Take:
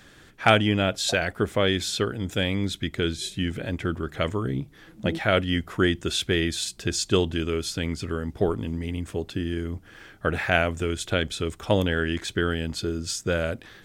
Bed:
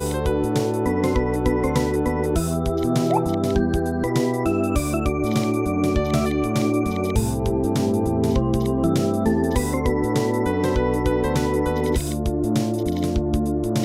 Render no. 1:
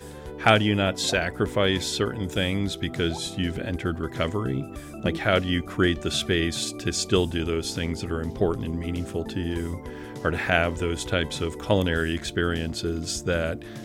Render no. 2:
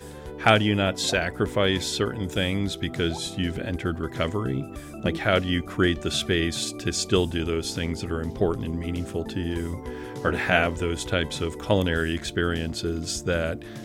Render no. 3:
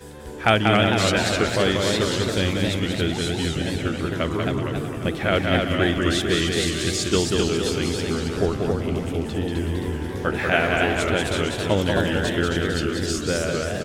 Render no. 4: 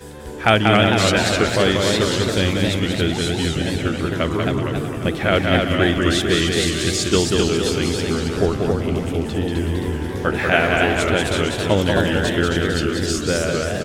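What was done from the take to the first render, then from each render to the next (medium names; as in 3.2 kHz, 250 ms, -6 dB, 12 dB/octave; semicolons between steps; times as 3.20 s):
add bed -17 dB
9.76–10.67 s: doubling 16 ms -5 dB
on a send: feedback delay 188 ms, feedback 39%, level -4 dB; on the sum: modulated delay 266 ms, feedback 47%, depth 191 cents, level -4 dB
trim +3.5 dB; peak limiter -1 dBFS, peak gain reduction 1 dB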